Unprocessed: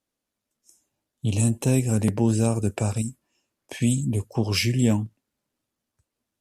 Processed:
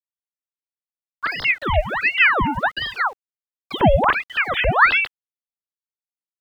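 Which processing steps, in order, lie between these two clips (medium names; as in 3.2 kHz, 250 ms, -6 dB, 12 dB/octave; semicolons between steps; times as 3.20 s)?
formants replaced by sine waves; dynamic bell 220 Hz, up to -3 dB, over -30 dBFS, Q 4.2; small samples zeroed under -47.5 dBFS; ring modulator with a swept carrier 1.4 kHz, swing 80%, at 1.4 Hz; trim +7.5 dB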